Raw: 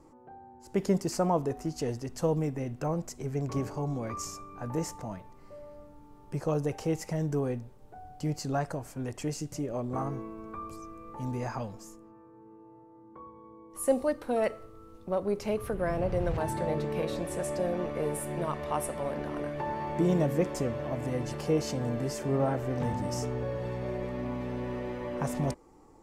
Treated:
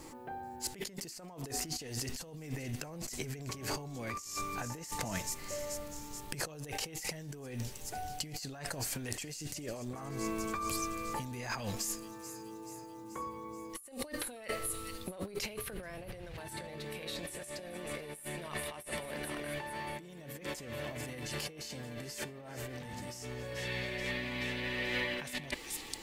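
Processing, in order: pre-emphasis filter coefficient 0.8; feedback echo behind a high-pass 431 ms, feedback 62%, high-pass 4.7 kHz, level -15 dB; compressor with a negative ratio -54 dBFS, ratio -1; high-order bell 2.7 kHz +8 dB, from 23.55 s +15.5 dB; trim +11.5 dB

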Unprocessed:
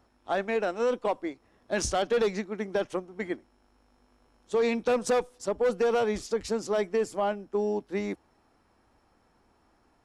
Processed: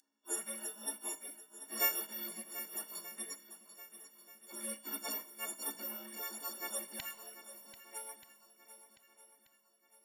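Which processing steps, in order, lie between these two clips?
partials quantised in pitch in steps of 4 st; high-pass 590 Hz 24 dB/octave, from 7.00 s 1.4 kHz; spectral gate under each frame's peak -30 dB weak; treble shelf 4.4 kHz +9 dB; shuffle delay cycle 1232 ms, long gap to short 1.5:1, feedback 35%, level -13.5 dB; Schroeder reverb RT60 0.69 s, combs from 25 ms, DRR 15.5 dB; trim +15 dB

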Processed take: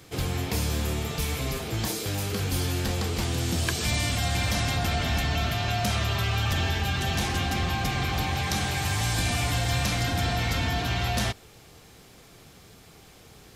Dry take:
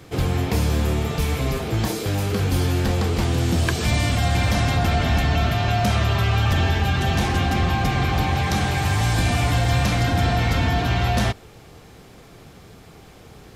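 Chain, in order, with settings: treble shelf 2.5 kHz +9 dB; trim -7.5 dB

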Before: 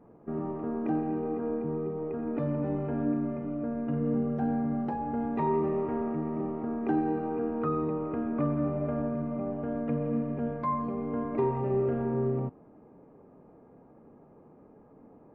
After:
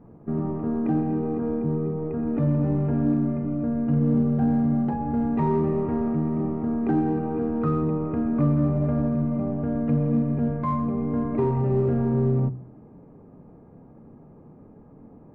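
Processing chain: tone controls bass +11 dB, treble -6 dB; de-hum 63.43 Hz, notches 10; in parallel at -11.5 dB: hard clipper -23 dBFS, distortion -12 dB

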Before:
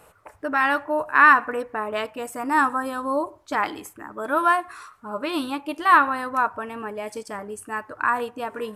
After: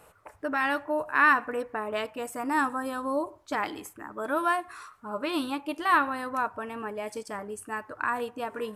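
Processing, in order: dynamic bell 1.2 kHz, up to -5 dB, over -29 dBFS, Q 1; trim -3 dB

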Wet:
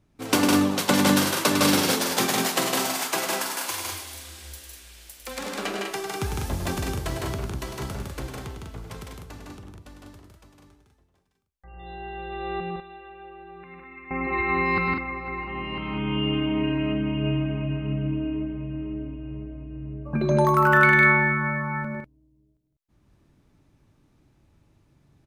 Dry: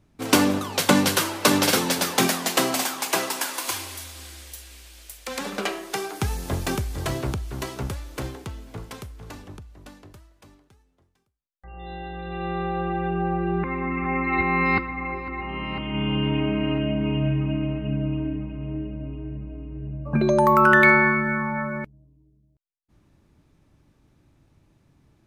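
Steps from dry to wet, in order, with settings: 12.60–14.11 s: pre-emphasis filter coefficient 0.9; loudspeakers at several distances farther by 35 m -7 dB, 54 m -3 dB, 68 m -5 dB; trim -4 dB

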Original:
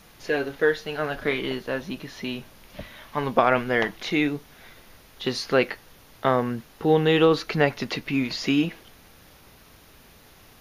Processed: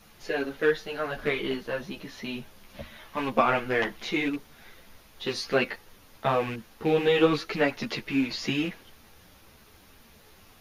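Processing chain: rattle on loud lows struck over -29 dBFS, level -24 dBFS; three-phase chorus

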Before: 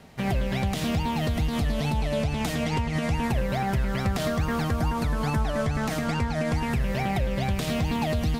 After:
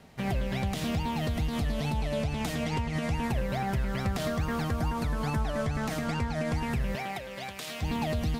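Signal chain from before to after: 3.69–5.20 s: crackle 100 per s -45 dBFS; 6.95–7.81 s: high-pass 520 Hz -> 1.4 kHz 6 dB/octave; trim -4 dB

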